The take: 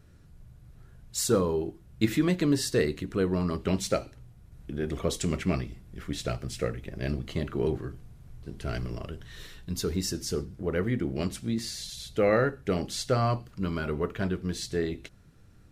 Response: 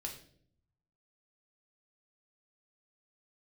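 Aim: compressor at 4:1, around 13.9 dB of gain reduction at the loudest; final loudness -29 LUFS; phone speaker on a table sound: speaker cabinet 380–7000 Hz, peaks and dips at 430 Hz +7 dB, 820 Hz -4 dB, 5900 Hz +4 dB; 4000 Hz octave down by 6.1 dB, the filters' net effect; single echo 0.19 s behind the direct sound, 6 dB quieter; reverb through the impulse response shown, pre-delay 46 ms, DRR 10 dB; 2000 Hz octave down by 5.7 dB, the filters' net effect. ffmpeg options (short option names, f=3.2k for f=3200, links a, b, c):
-filter_complex "[0:a]equalizer=f=2k:t=o:g=-5.5,equalizer=f=4k:t=o:g=-8,acompressor=threshold=-37dB:ratio=4,aecho=1:1:190:0.501,asplit=2[a][b];[1:a]atrim=start_sample=2205,adelay=46[c];[b][c]afir=irnorm=-1:irlink=0,volume=-8.5dB[d];[a][d]amix=inputs=2:normalize=0,highpass=f=380:w=0.5412,highpass=f=380:w=1.3066,equalizer=f=430:t=q:w=4:g=7,equalizer=f=820:t=q:w=4:g=-4,equalizer=f=5.9k:t=q:w=4:g=4,lowpass=f=7k:w=0.5412,lowpass=f=7k:w=1.3066,volume=12dB"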